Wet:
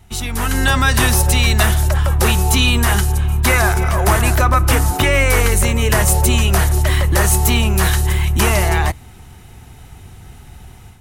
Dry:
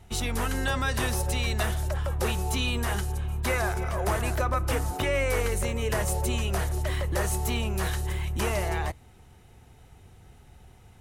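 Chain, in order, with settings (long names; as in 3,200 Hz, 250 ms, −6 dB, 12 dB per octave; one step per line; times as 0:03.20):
parametric band 510 Hz −6.5 dB 0.81 octaves
automatic gain control gain up to 9 dB
high-shelf EQ 12,000 Hz +6.5 dB
level +5 dB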